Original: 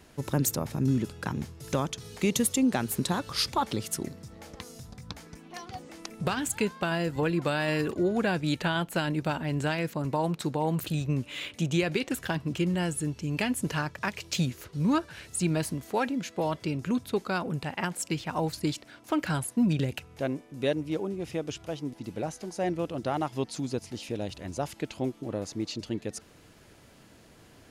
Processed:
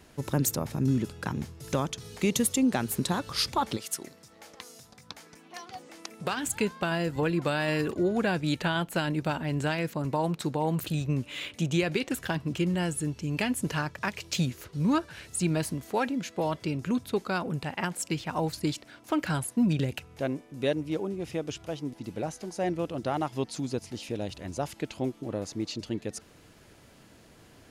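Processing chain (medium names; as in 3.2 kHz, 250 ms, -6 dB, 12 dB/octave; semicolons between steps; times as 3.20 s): 3.76–6.42 s: high-pass 890 Hz -> 310 Hz 6 dB/octave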